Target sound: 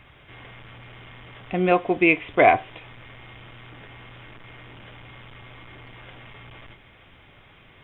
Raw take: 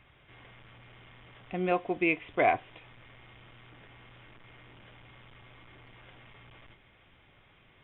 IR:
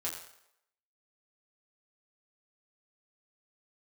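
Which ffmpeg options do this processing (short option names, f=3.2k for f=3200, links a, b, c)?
-filter_complex "[0:a]asplit=2[a][b];[1:a]atrim=start_sample=2205,atrim=end_sample=4410[c];[b][c]afir=irnorm=-1:irlink=0,volume=-17dB[d];[a][d]amix=inputs=2:normalize=0,volume=8.5dB"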